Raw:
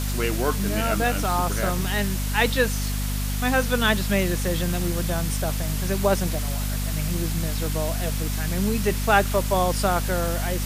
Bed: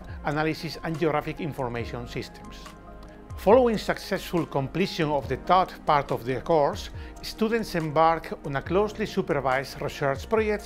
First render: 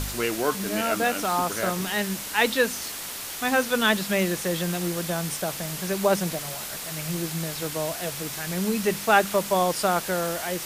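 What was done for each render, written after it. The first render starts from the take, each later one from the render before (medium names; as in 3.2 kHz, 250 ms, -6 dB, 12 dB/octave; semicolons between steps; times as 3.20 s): de-hum 50 Hz, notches 5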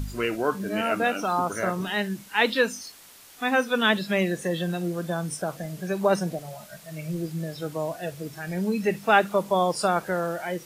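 noise print and reduce 15 dB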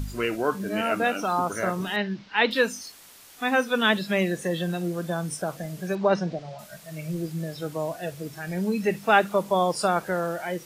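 1.96–2.51 s: steep low-pass 5.1 kHz; 5.95–6.59 s: low-pass 5.3 kHz 24 dB/octave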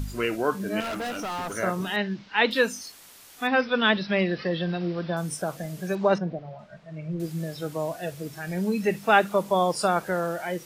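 0.80–1.57 s: hard clipper -29 dBFS; 3.47–5.17 s: careless resampling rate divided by 4×, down none, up filtered; 6.18–7.20 s: tape spacing loss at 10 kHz 33 dB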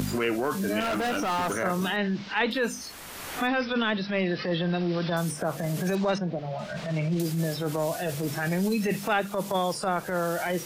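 transient shaper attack -11 dB, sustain +3 dB; three bands compressed up and down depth 100%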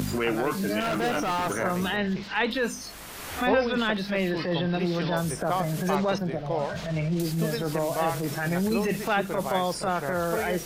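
add bed -8 dB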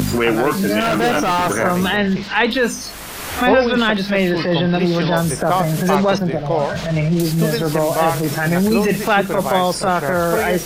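trim +10 dB; peak limiter -2 dBFS, peak gain reduction 1.5 dB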